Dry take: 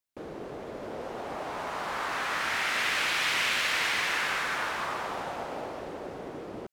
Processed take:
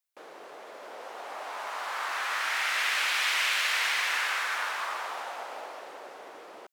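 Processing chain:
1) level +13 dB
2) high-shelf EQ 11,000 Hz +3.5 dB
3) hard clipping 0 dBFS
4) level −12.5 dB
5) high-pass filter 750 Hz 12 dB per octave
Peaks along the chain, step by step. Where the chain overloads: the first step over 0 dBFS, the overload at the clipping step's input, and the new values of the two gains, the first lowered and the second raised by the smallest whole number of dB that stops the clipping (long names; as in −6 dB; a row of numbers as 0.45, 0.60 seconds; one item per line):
−2.5, −2.5, −2.5, −15.0, −15.0 dBFS
no step passes full scale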